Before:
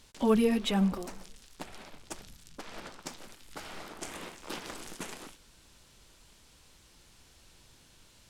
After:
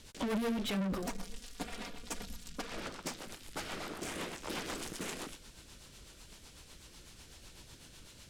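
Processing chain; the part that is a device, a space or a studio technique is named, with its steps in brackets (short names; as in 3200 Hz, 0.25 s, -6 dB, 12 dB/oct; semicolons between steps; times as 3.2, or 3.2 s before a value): 1.02–2.71 comb 4.2 ms, depth 73%; overdriven rotary cabinet (tube stage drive 38 dB, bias 0.2; rotary speaker horn 8 Hz); gain +7.5 dB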